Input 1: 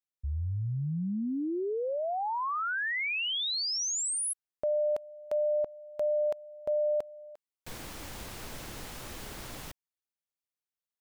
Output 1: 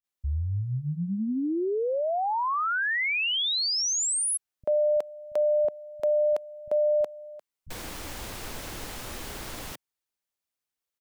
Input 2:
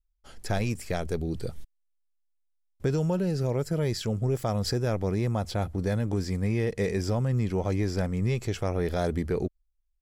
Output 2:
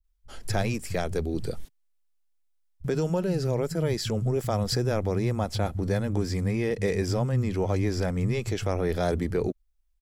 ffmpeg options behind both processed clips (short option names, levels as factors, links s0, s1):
-filter_complex "[0:a]asplit=2[s0][s1];[s1]alimiter=level_in=1.06:limit=0.0631:level=0:latency=1:release=320,volume=0.944,volume=1.33[s2];[s0][s2]amix=inputs=2:normalize=0,acrossover=split=150[s3][s4];[s4]adelay=40[s5];[s3][s5]amix=inputs=2:normalize=0,volume=0.75"